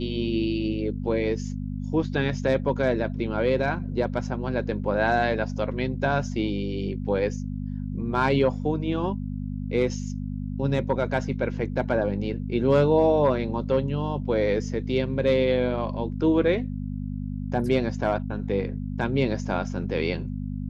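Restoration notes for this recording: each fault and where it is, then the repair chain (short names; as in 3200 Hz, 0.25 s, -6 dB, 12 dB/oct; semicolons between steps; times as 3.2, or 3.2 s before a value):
hum 50 Hz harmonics 5 -31 dBFS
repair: de-hum 50 Hz, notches 5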